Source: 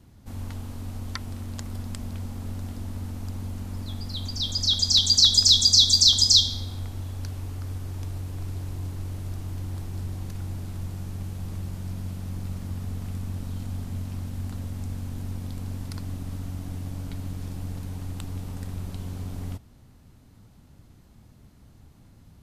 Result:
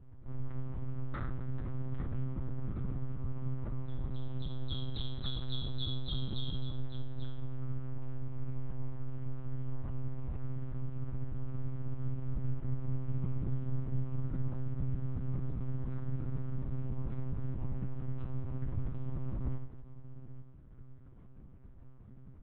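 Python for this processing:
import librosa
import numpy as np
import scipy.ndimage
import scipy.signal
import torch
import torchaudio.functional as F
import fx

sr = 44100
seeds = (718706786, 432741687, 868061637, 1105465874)

y = scipy.signal.sosfilt(scipy.signal.butter(2, 1100.0, 'lowpass', fs=sr, output='sos'), x)
y = fx.peak_eq(y, sr, hz=540.0, db=-9.5, octaves=1.2)
y = fx.comb_fb(y, sr, f0_hz=86.0, decay_s=0.41, harmonics='all', damping=0.0, mix_pct=90)
y = fx.echo_multitap(y, sr, ms=(53, 56, 93, 256, 840), db=(-14.0, -17.5, -12.5, -17.0, -13.5))
y = fx.lpc_monotone(y, sr, seeds[0], pitch_hz=130.0, order=8)
y = y * 10.0 ** (10.0 / 20.0)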